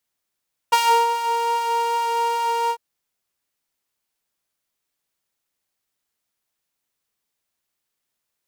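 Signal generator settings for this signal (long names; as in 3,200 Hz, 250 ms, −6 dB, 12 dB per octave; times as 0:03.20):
subtractive patch with filter wobble A#5, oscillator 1 triangle, oscillator 2 level −14 dB, sub −11 dB, noise −30 dB, filter highpass, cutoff 120 Hz, Q 0.73, filter envelope 2.5 octaves, filter decay 0.63 s, filter sustain 35%, attack 13 ms, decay 0.33 s, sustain −13 dB, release 0.07 s, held 1.98 s, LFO 2.5 Hz, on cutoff 1.8 octaves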